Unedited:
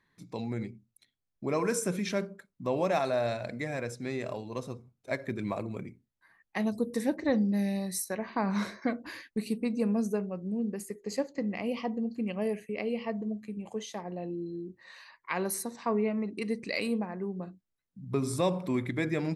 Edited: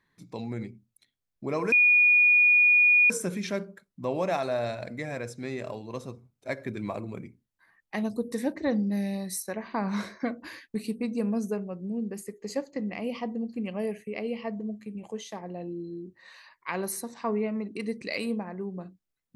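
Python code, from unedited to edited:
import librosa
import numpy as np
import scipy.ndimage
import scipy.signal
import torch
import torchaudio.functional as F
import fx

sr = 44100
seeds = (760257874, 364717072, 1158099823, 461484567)

y = fx.edit(x, sr, fx.insert_tone(at_s=1.72, length_s=1.38, hz=2450.0, db=-16.0), tone=tone)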